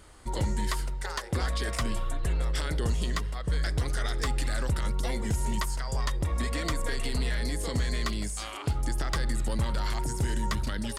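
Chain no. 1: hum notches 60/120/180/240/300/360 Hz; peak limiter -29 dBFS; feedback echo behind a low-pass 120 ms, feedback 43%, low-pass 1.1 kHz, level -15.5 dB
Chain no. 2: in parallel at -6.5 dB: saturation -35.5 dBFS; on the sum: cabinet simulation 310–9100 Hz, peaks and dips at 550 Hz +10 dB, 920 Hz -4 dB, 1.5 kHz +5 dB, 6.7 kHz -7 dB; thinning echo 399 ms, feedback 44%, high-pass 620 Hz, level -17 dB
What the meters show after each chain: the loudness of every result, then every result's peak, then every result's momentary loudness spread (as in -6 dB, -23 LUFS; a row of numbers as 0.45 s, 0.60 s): -38.5 LUFS, -33.0 LUFS; -27.5 dBFS, -16.5 dBFS; 1 LU, 5 LU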